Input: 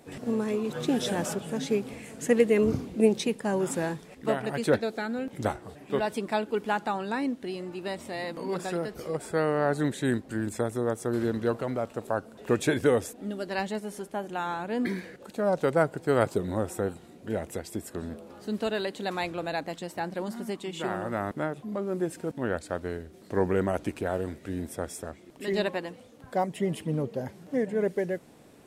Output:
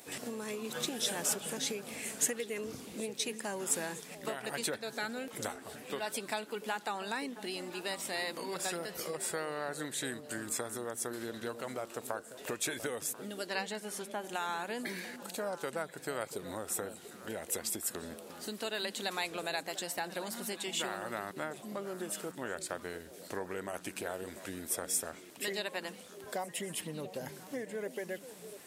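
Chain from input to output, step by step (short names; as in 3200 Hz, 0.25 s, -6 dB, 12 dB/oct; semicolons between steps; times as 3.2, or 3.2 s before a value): 13.46–14.23 high shelf 10000 Hz -> 5900 Hz -9.5 dB; compressor 6:1, threshold -32 dBFS, peak gain reduction 15.5 dB; tilt +3.5 dB/oct; on a send: delay with a stepping band-pass 0.346 s, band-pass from 180 Hz, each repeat 1.4 oct, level -7 dB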